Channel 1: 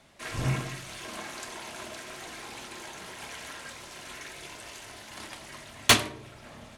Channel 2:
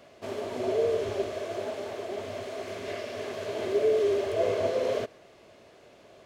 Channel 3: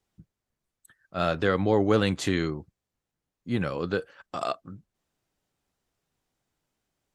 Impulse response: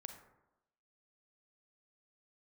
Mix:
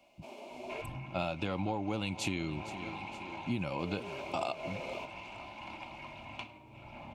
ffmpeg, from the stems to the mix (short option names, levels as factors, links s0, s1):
-filter_complex "[0:a]acompressor=threshold=0.0112:ratio=16,lowpass=2200,adelay=500,volume=0.944[s0];[1:a]highpass=f=180:w=0.5412,highpass=f=180:w=1.3066,volume=0.251,asplit=3[s1][s2][s3];[s1]atrim=end=0.82,asetpts=PTS-STARTPTS,afade=t=out:st=0.816:d=0.004:c=hsin[s4];[s2]atrim=start=0.82:end=3.79,asetpts=PTS-STARTPTS,volume=0[s5];[s3]atrim=start=3.79,asetpts=PTS-STARTPTS,afade=t=in:d=0.004:c=hsin[s6];[s4][s5][s6]concat=n=3:v=0:a=1[s7];[2:a]volume=1.12,asplit=2[s8][s9];[s9]volume=0.1,aecho=0:1:465|930|1395|1860|2325|2790|3255:1|0.51|0.26|0.133|0.0677|0.0345|0.0176[s10];[s0][s7][s8][s10]amix=inputs=4:normalize=0,superequalizer=7b=0.355:9b=2:10b=0.501:11b=0.251:12b=2.24,acompressor=threshold=0.0316:ratio=16"